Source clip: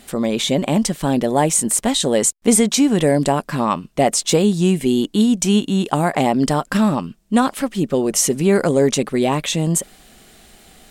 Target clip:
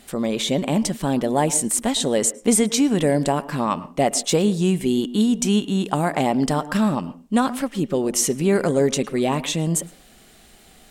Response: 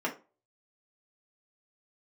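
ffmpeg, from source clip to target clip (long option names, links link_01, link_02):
-filter_complex "[0:a]asplit=2[link_01][link_02];[1:a]atrim=start_sample=2205,adelay=107[link_03];[link_02][link_03]afir=irnorm=-1:irlink=0,volume=-24dB[link_04];[link_01][link_04]amix=inputs=2:normalize=0,volume=-3.5dB"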